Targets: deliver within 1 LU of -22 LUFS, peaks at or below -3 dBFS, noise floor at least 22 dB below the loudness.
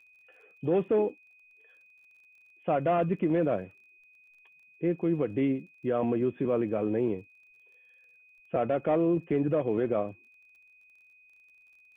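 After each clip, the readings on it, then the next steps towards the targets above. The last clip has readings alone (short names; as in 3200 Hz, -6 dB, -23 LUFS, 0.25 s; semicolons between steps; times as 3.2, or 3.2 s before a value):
ticks 21/s; steady tone 2500 Hz; tone level -57 dBFS; loudness -29.0 LUFS; peak -15.5 dBFS; loudness target -22.0 LUFS
-> de-click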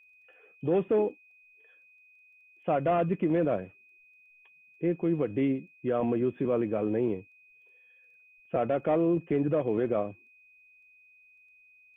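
ticks 0/s; steady tone 2500 Hz; tone level -57 dBFS
-> notch 2500 Hz, Q 30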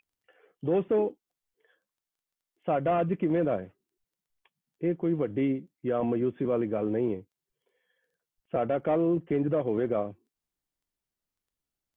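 steady tone none; loudness -29.0 LUFS; peak -15.5 dBFS; loudness target -22.0 LUFS
-> gain +7 dB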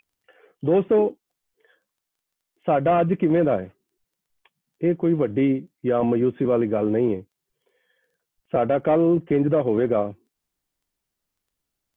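loudness -22.0 LUFS; peak -8.5 dBFS; noise floor -83 dBFS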